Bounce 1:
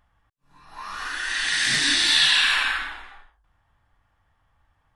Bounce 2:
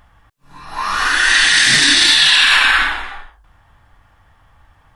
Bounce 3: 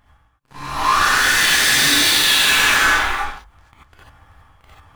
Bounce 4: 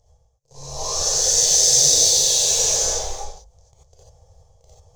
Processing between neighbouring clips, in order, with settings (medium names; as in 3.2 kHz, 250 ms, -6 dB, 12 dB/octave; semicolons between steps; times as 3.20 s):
loudness maximiser +16.5 dB; trim -1 dB
waveshaping leveller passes 5; reverse; upward compressor, threshold -18 dBFS; reverse; gated-style reverb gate 110 ms rising, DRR -7.5 dB; trim -18 dB
FFT filter 150 Hz 0 dB, 220 Hz -24 dB, 330 Hz -13 dB, 480 Hz +10 dB, 700 Hz 0 dB, 1.4 kHz -29 dB, 2.7 kHz -19 dB, 6.4 kHz +14 dB, 10 kHz -9 dB; trim -2 dB